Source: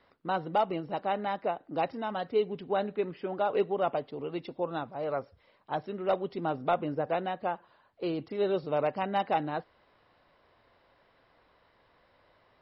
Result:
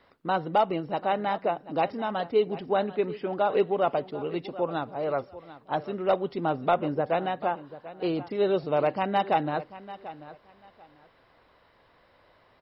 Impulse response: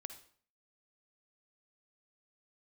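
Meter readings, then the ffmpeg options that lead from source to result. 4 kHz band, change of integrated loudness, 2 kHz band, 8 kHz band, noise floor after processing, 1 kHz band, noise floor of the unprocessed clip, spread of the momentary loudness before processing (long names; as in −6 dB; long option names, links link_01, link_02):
+4.0 dB, +4.0 dB, +4.0 dB, can't be measured, −62 dBFS, +4.0 dB, −66 dBFS, 7 LU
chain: -af "aecho=1:1:740|1480:0.158|0.0333,volume=4dB"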